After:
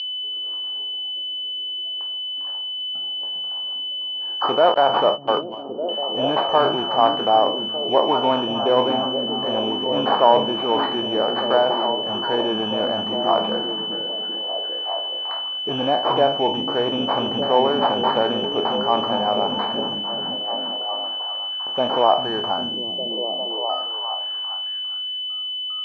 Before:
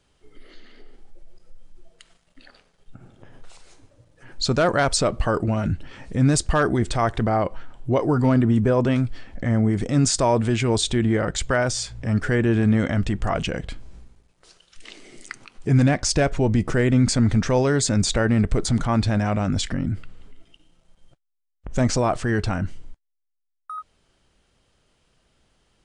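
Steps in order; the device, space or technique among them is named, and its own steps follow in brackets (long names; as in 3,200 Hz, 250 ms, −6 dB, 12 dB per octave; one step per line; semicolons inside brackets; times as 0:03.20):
peak hold with a decay on every bin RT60 0.41 s
toy sound module (linearly interpolated sample-rate reduction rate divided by 8×; switching amplifier with a slow clock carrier 3,000 Hz; loudspeaker in its box 610–4,800 Hz, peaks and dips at 840 Hz +6 dB, 1,400 Hz −5 dB, 2,000 Hz −9 dB, 3,000 Hz −4 dB, 4,400 Hz +5 dB)
0:04.74–0:05.89: noise gate −26 dBFS, range −27 dB
echo through a band-pass that steps 401 ms, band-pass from 160 Hz, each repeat 0.7 octaves, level −0.5 dB
level +7 dB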